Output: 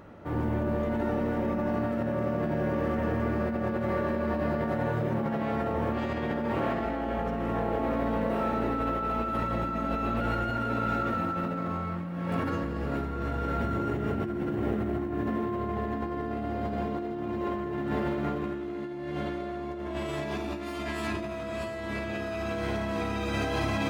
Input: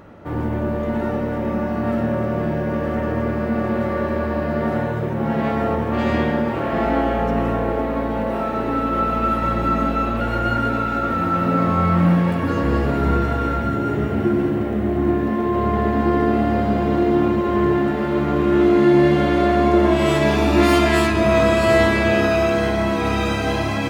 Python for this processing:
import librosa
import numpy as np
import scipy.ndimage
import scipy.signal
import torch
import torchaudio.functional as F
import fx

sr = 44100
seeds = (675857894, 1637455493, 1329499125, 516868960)

y = fx.echo_feedback(x, sr, ms=646, feedback_pct=55, wet_db=-12.5)
y = fx.over_compress(y, sr, threshold_db=-22.0, ratio=-1.0)
y = y * librosa.db_to_amplitude(-8.5)